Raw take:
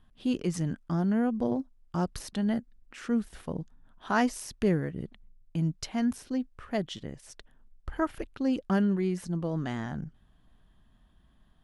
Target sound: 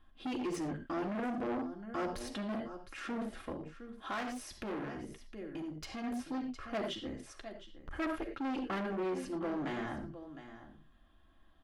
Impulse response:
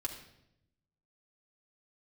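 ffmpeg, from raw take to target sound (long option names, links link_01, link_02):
-filter_complex "[0:a]aecho=1:1:711:0.168[link_01];[1:a]atrim=start_sample=2205,afade=type=out:start_time=0.17:duration=0.01,atrim=end_sample=7938[link_02];[link_01][link_02]afir=irnorm=-1:irlink=0,asoftclip=type=tanh:threshold=-28dB,bandreject=frequency=930:width=11,volume=32dB,asoftclip=hard,volume=-32dB,asettb=1/sr,asplit=3[link_03][link_04][link_05];[link_03]atrim=end=3.524[link_06];[link_04]atrim=start=3.52:end=6.04,asetpts=PTS-STARTPTS,afade=type=in:duration=0.004:curve=qsin,afade=type=out:start_time=2.516:duration=0.004:curve=qsin,acompressor=threshold=-38dB:ratio=3[link_07];[link_05]atrim=start=6.036[link_08];[link_06][link_07]acrossfade=duration=0.004:curve1=hsin:curve2=qsin[link_09];[link_09][link_08]acrossfade=duration=0.004:curve1=qsin:curve2=hsin,bass=frequency=250:gain=-10,treble=frequency=4000:gain=-8,volume=2dB"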